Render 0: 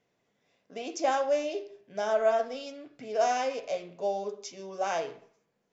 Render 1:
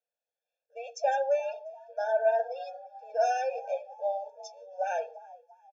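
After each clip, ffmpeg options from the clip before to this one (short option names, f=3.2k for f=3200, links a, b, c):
-filter_complex "[0:a]asplit=5[a][b][c][d][e];[b]adelay=347,afreqshift=63,volume=-17dB[f];[c]adelay=694,afreqshift=126,volume=-23.2dB[g];[d]adelay=1041,afreqshift=189,volume=-29.4dB[h];[e]adelay=1388,afreqshift=252,volume=-35.6dB[i];[a][f][g][h][i]amix=inputs=5:normalize=0,afftdn=nr=17:nf=-40,afftfilt=real='re*eq(mod(floor(b*sr/1024/460),2),1)':imag='im*eq(mod(floor(b*sr/1024/460),2),1)':win_size=1024:overlap=0.75"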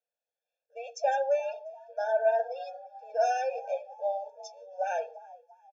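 -af anull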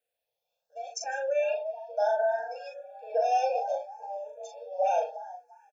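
-filter_complex "[0:a]alimiter=level_in=2.5dB:limit=-24dB:level=0:latency=1:release=39,volume=-2.5dB,asplit=2[a][b];[b]adelay=39,volume=-4dB[c];[a][c]amix=inputs=2:normalize=0,asplit=2[d][e];[e]afreqshift=0.67[f];[d][f]amix=inputs=2:normalize=1,volume=7.5dB"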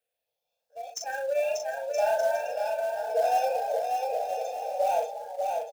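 -filter_complex "[0:a]acrossover=split=740[a][b];[b]acrusher=bits=3:mode=log:mix=0:aa=0.000001[c];[a][c]amix=inputs=2:normalize=0,aecho=1:1:590|973.5|1223|1385|1490:0.631|0.398|0.251|0.158|0.1"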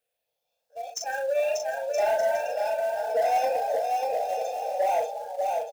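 -af "aeval=exprs='0.2*(cos(1*acos(clip(val(0)/0.2,-1,1)))-cos(1*PI/2))+0.0158*(cos(5*acos(clip(val(0)/0.2,-1,1)))-cos(5*PI/2))':c=same"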